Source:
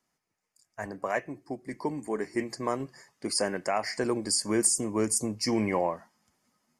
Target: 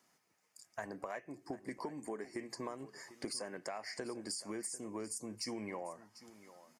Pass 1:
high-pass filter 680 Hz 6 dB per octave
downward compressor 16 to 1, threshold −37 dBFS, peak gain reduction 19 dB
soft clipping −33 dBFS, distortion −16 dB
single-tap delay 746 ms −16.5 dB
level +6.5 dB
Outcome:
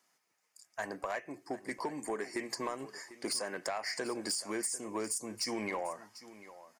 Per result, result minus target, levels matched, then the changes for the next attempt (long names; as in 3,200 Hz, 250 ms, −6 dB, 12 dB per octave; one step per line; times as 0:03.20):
downward compressor: peak gain reduction −7.5 dB; 250 Hz band −2.5 dB
change: downward compressor 16 to 1, threshold −45 dBFS, peak gain reduction 26.5 dB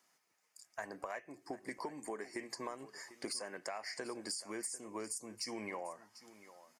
250 Hz band −3.0 dB
change: high-pass filter 190 Hz 6 dB per octave